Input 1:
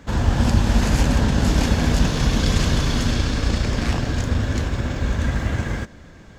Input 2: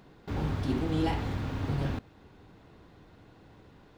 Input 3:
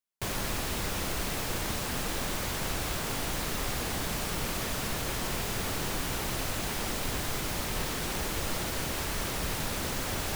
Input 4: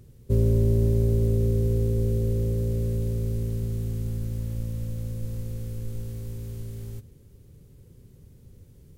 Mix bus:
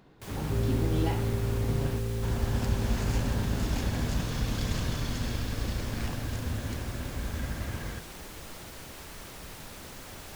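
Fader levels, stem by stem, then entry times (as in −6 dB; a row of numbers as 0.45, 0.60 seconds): −12.5, −2.5, −11.5, −8.0 decibels; 2.15, 0.00, 0.00, 0.20 seconds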